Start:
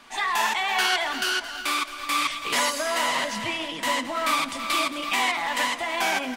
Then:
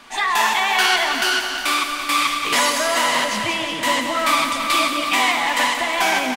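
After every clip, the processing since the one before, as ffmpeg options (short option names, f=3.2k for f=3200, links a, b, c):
-af "aecho=1:1:179|358|537|716|895|1074|1253:0.398|0.235|0.139|0.0818|0.0482|0.0285|0.0168,volume=5.5dB"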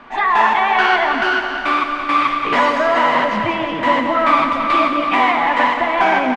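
-af "lowpass=1.6k,volume=6.5dB"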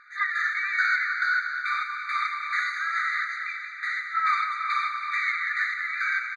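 -af "aeval=exprs='0.891*(cos(1*acos(clip(val(0)/0.891,-1,1)))-cos(1*PI/2))+0.0282*(cos(6*acos(clip(val(0)/0.891,-1,1)))-cos(6*PI/2))':c=same,afftfilt=real='re*eq(mod(floor(b*sr/1024/1200),2),1)':imag='im*eq(mod(floor(b*sr/1024/1200),2),1)':win_size=1024:overlap=0.75,volume=-5.5dB"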